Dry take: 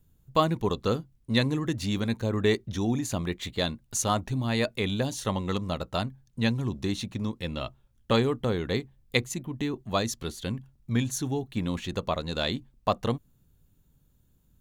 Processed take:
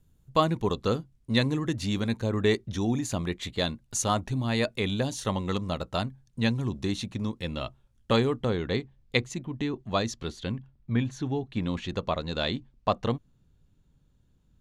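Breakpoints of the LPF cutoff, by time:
8.13 s 11000 Hz
8.67 s 5700 Hz
10.3 s 5700 Hz
11 s 2600 Hz
11.65 s 5500 Hz

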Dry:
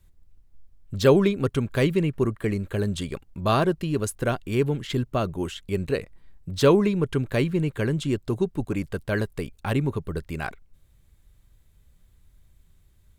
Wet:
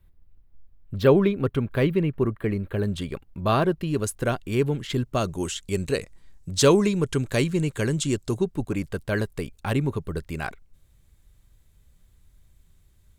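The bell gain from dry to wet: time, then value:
bell 7200 Hz 1.3 oct
-14 dB
from 2.83 s -6.5 dB
from 3.87 s +1.5 dB
from 5.15 s +13 dB
from 8.37 s +2.5 dB

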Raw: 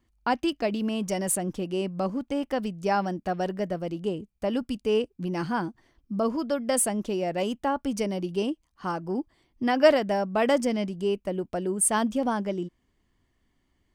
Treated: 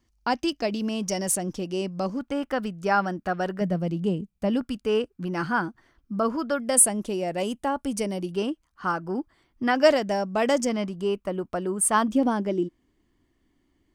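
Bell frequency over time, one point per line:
bell +9.5 dB 0.67 oct
5600 Hz
from 2.19 s 1400 Hz
from 3.61 s 180 Hz
from 4.61 s 1400 Hz
from 6.6 s 9600 Hz
from 8.32 s 1400 Hz
from 9.76 s 6600 Hz
from 10.69 s 1200 Hz
from 12.08 s 310 Hz

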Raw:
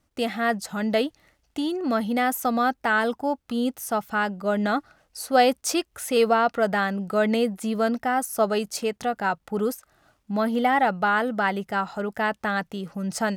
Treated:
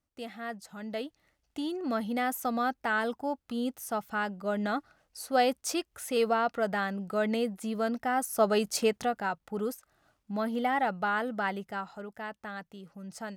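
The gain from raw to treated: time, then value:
0.8 s -14.5 dB
1.65 s -7 dB
7.88 s -7 dB
8.86 s +0.5 dB
9.29 s -7.5 dB
11.51 s -7.5 dB
12.17 s -14.5 dB

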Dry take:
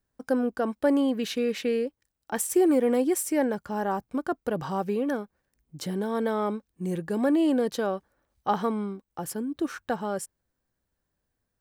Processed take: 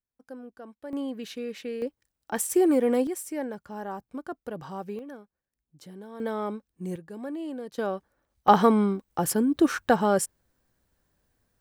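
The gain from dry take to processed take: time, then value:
-17 dB
from 0.93 s -8 dB
from 1.82 s 0 dB
from 3.07 s -7.5 dB
from 4.99 s -14 dB
from 6.2 s -3.5 dB
from 6.96 s -12 dB
from 7.78 s -1.5 dB
from 8.48 s +8 dB

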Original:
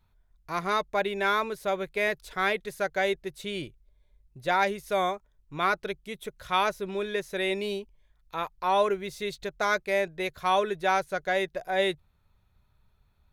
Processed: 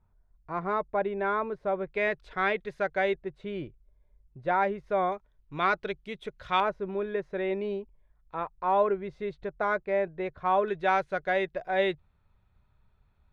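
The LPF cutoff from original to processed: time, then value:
1200 Hz
from 1.94 s 2500 Hz
from 3.16 s 1500 Hz
from 5.12 s 3600 Hz
from 6.6 s 1400 Hz
from 10.68 s 2800 Hz

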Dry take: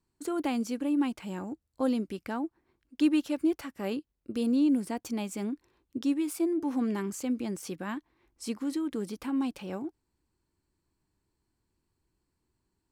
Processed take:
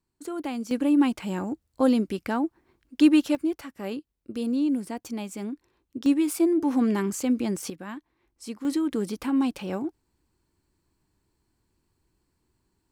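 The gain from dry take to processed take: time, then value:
-1.5 dB
from 0.71 s +7 dB
from 3.35 s 0 dB
from 6.06 s +6.5 dB
from 7.7 s -2 dB
from 8.65 s +6 dB

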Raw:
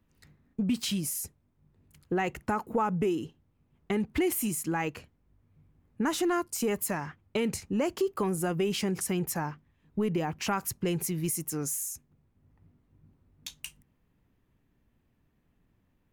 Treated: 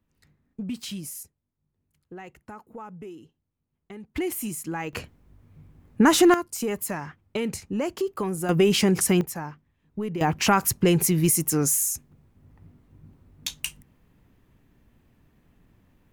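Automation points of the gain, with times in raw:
-4 dB
from 1.23 s -12.5 dB
from 4.16 s -1 dB
from 4.93 s +11.5 dB
from 6.34 s +1 dB
from 8.49 s +9.5 dB
from 9.21 s -1.5 dB
from 10.21 s +10 dB

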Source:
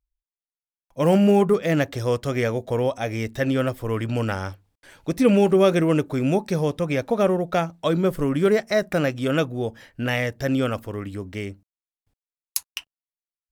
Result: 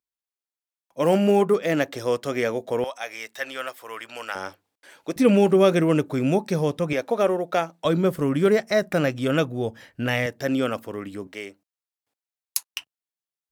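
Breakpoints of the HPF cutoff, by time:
230 Hz
from 2.84 s 930 Hz
from 4.35 s 320 Hz
from 5.16 s 110 Hz
from 6.93 s 300 Hz
from 7.85 s 83 Hz
from 10.26 s 190 Hz
from 11.27 s 430 Hz
from 12.67 s 100 Hz

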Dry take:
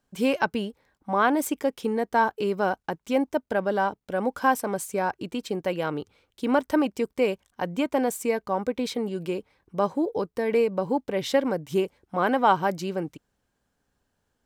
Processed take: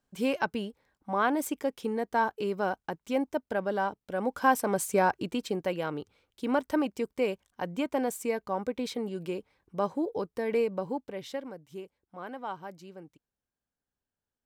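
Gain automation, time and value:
4.13 s -5 dB
4.96 s +2.5 dB
5.89 s -5 dB
10.71 s -5 dB
11.62 s -17.5 dB

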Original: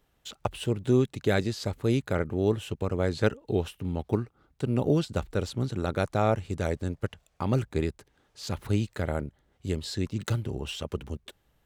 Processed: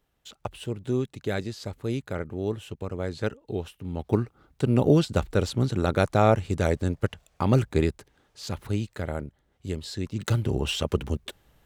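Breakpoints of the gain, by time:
3.82 s -4 dB
4.22 s +5 dB
7.88 s +5 dB
8.71 s -1.5 dB
10.05 s -1.5 dB
10.52 s +7.5 dB

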